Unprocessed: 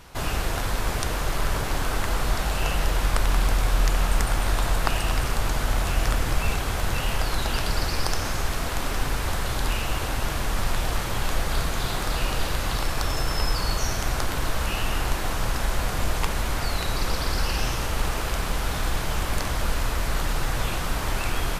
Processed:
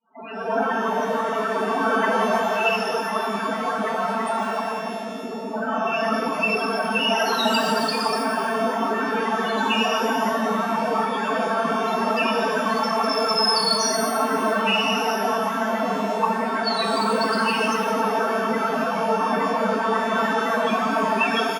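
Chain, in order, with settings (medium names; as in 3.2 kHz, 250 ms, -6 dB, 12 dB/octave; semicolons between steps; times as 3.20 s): fade-in on the opening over 0.51 s; hum notches 60/120/180/240/300/360/420/480 Hz; comb 4.5 ms, depth 55%; level rider; 4.81–5.53 s: Gaussian low-pass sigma 8.5 samples; loudest bins only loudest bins 16; brick-wall FIR high-pass 190 Hz; pitch-shifted reverb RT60 1.4 s, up +12 st, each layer -8 dB, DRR 4 dB; trim +4.5 dB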